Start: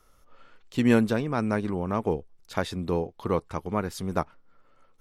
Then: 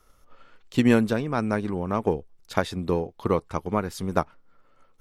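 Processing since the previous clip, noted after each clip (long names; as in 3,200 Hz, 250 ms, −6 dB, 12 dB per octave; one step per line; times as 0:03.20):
transient designer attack +5 dB, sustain +1 dB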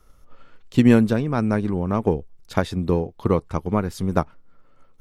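low-shelf EQ 310 Hz +8 dB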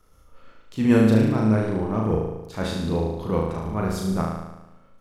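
transient designer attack −11 dB, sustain +2 dB
flutter between parallel walls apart 6.3 metres, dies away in 1 s
level −2.5 dB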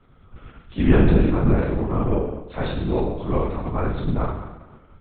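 linear-prediction vocoder at 8 kHz whisper
level +2 dB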